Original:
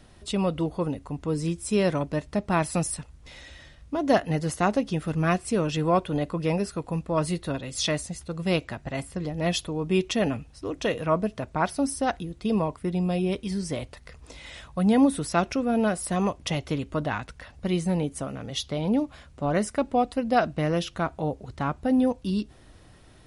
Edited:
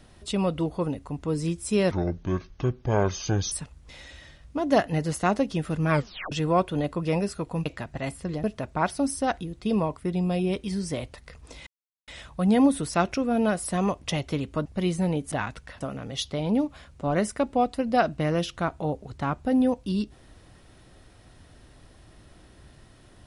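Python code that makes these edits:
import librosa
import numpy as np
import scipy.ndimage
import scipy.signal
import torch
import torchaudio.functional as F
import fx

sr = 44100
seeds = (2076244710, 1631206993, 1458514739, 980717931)

y = fx.edit(x, sr, fx.speed_span(start_s=1.91, length_s=0.98, speed=0.61),
    fx.tape_stop(start_s=5.27, length_s=0.42),
    fx.cut(start_s=7.03, length_s=1.54),
    fx.cut(start_s=9.35, length_s=1.88),
    fx.insert_silence(at_s=14.46, length_s=0.41),
    fx.move(start_s=17.04, length_s=0.49, to_s=18.19), tone=tone)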